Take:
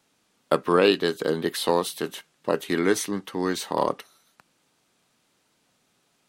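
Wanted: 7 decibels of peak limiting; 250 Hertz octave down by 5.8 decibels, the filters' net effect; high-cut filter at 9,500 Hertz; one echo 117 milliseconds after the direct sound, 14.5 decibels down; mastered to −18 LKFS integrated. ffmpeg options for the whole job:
ffmpeg -i in.wav -af "lowpass=9500,equalizer=frequency=250:width_type=o:gain=-8.5,alimiter=limit=-13.5dB:level=0:latency=1,aecho=1:1:117:0.188,volume=11.5dB" out.wav

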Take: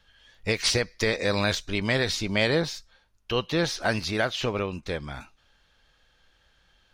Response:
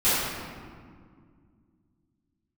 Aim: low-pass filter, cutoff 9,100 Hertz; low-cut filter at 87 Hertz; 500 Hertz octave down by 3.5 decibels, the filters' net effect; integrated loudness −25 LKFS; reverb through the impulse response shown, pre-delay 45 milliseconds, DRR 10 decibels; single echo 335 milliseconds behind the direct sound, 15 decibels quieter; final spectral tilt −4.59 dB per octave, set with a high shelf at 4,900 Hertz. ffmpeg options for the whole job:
-filter_complex "[0:a]highpass=87,lowpass=9100,equalizer=frequency=500:width_type=o:gain=-4,highshelf=frequency=4900:gain=-8,aecho=1:1:335:0.178,asplit=2[link_01][link_02];[1:a]atrim=start_sample=2205,adelay=45[link_03];[link_02][link_03]afir=irnorm=-1:irlink=0,volume=-26.5dB[link_04];[link_01][link_04]amix=inputs=2:normalize=0,volume=3.5dB"

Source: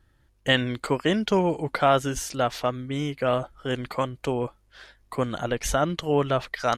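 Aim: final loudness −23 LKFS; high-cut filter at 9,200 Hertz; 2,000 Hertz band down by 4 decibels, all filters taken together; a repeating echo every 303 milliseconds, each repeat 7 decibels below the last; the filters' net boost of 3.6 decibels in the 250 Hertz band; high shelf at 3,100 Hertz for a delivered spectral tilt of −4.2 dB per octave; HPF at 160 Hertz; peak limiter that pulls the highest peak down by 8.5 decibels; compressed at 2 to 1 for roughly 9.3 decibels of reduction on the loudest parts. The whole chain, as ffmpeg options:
ffmpeg -i in.wav -af "highpass=160,lowpass=9200,equalizer=frequency=250:width_type=o:gain=5.5,equalizer=frequency=2000:width_type=o:gain=-7.5,highshelf=frequency=3100:gain=7,acompressor=threshold=-32dB:ratio=2,alimiter=limit=-22.5dB:level=0:latency=1,aecho=1:1:303|606|909|1212|1515:0.447|0.201|0.0905|0.0407|0.0183,volume=11dB" out.wav

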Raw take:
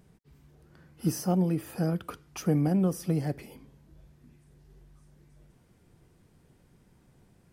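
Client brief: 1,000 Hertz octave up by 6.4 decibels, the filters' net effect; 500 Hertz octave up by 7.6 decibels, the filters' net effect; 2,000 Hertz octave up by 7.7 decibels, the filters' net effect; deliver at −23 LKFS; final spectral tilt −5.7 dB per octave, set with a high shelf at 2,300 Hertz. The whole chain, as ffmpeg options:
ffmpeg -i in.wav -af "equalizer=frequency=500:width_type=o:gain=8,equalizer=frequency=1000:width_type=o:gain=3,equalizer=frequency=2000:width_type=o:gain=5,highshelf=frequency=2300:gain=7,volume=3dB" out.wav

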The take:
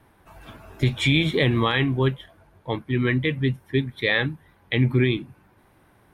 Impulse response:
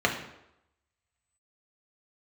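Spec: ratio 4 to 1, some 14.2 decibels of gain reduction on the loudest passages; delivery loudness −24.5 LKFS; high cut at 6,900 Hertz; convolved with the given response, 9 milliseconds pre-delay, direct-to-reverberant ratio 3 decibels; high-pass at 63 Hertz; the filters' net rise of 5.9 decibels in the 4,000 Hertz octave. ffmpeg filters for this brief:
-filter_complex "[0:a]highpass=63,lowpass=6900,equalizer=frequency=4000:width_type=o:gain=7.5,acompressor=threshold=-32dB:ratio=4,asplit=2[link_01][link_02];[1:a]atrim=start_sample=2205,adelay=9[link_03];[link_02][link_03]afir=irnorm=-1:irlink=0,volume=-17dB[link_04];[link_01][link_04]amix=inputs=2:normalize=0,volume=8.5dB"

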